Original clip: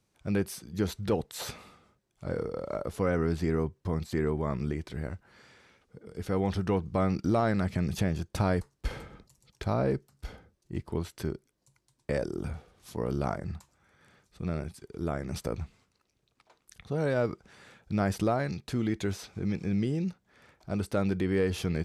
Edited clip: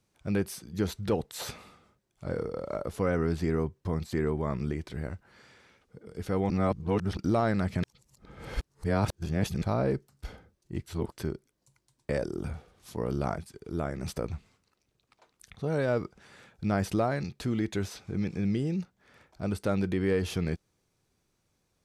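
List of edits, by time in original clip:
0:06.50–0:07.17: reverse
0:07.83–0:09.62: reverse
0:10.86–0:11.12: reverse
0:13.38–0:14.66: remove

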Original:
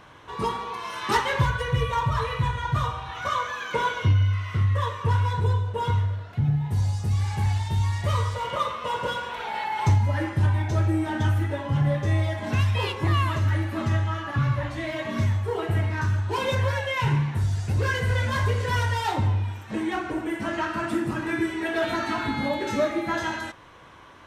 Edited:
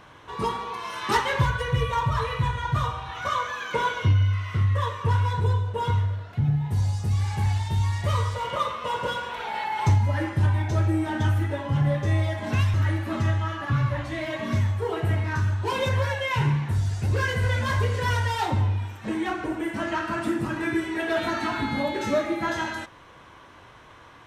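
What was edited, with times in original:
0:12.74–0:13.40: remove

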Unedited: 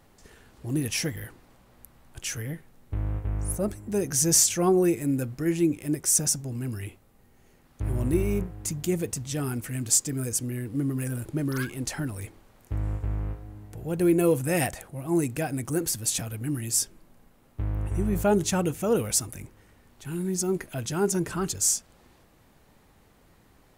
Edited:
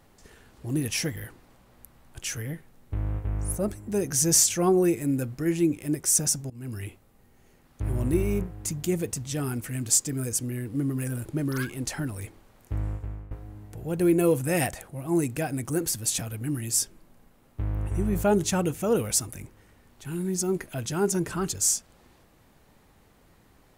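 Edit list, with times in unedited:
0:06.50–0:06.79: fade in, from −20.5 dB
0:12.79–0:13.31: fade out, to −17.5 dB

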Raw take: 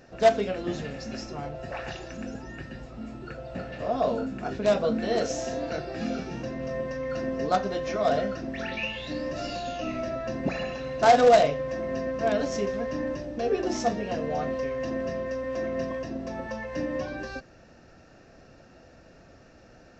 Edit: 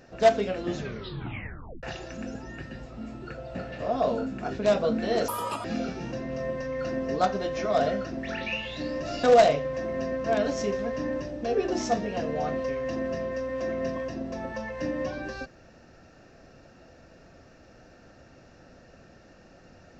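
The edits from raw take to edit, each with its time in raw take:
0:00.76: tape stop 1.07 s
0:05.28–0:05.95: play speed 184%
0:09.54–0:11.18: remove

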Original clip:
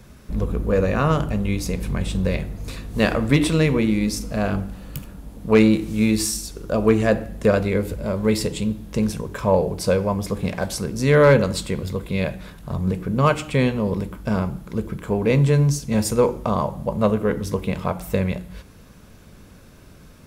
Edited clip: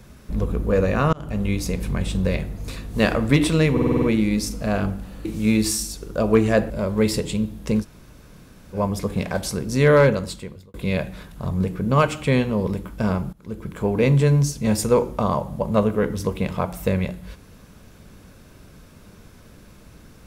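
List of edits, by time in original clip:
0:01.13–0:01.42: fade in
0:03.72: stutter 0.05 s, 7 plays
0:04.95–0:05.79: remove
0:07.24–0:07.97: remove
0:09.09–0:10.02: fill with room tone, crossfade 0.06 s
0:11.15–0:12.01: fade out
0:14.60–0:15.08: fade in, from −20 dB

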